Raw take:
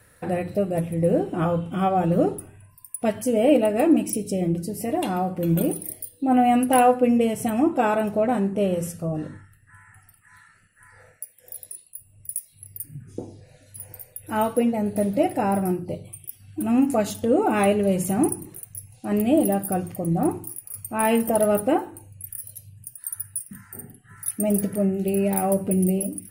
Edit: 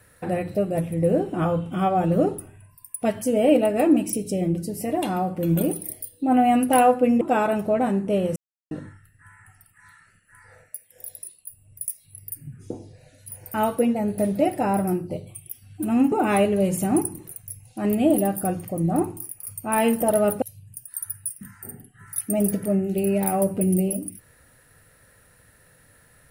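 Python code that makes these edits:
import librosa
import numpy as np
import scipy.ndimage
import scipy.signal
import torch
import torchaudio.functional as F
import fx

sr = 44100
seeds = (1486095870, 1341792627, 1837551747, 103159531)

y = fx.edit(x, sr, fx.cut(start_s=7.21, length_s=0.48),
    fx.silence(start_s=8.84, length_s=0.35),
    fx.cut(start_s=14.02, length_s=0.3),
    fx.cut(start_s=16.9, length_s=0.49),
    fx.cut(start_s=21.69, length_s=0.83), tone=tone)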